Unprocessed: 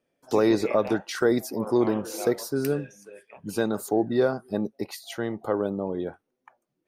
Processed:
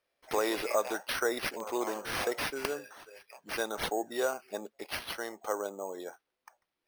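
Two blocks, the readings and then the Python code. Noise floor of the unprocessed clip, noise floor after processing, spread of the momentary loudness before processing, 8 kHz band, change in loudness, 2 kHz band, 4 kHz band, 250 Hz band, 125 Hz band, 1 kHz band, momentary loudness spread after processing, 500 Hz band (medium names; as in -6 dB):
-79 dBFS, -85 dBFS, 11 LU, -1.0 dB, -7.5 dB, +0.5 dB, +1.0 dB, -14.5 dB, -18.5 dB, -2.5 dB, 12 LU, -8.5 dB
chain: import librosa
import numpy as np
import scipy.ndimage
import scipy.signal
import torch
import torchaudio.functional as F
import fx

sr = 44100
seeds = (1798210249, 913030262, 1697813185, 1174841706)

y = scipy.signal.sosfilt(scipy.signal.butter(2, 640.0, 'highpass', fs=sr, output='sos'), x)
y = fx.high_shelf(y, sr, hz=7100.0, db=10.5)
y = np.repeat(y[::6], 6)[:len(y)]
y = y * librosa.db_to_amplitude(-2.0)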